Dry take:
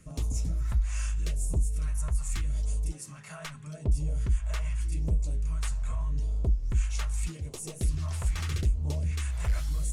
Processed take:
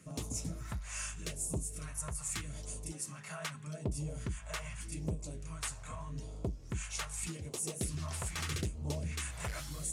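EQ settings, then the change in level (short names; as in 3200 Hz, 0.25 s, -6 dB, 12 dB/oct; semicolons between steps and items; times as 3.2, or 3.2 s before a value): dynamic EQ 9300 Hz, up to +3 dB, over -50 dBFS, Q 1.1; HPF 140 Hz 12 dB/oct; 0.0 dB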